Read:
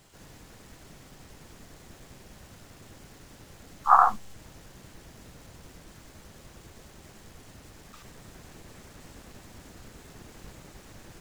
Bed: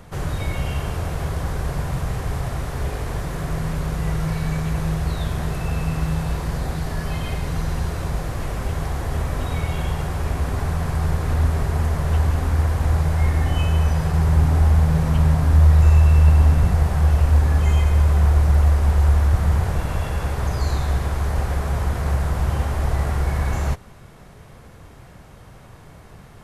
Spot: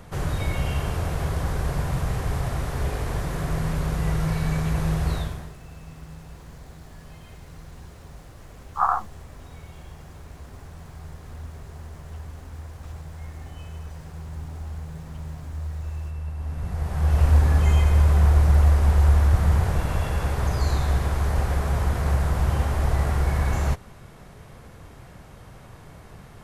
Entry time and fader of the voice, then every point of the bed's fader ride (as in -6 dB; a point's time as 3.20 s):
4.90 s, -4.0 dB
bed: 5.16 s -1 dB
5.57 s -19 dB
16.35 s -19 dB
17.23 s -1 dB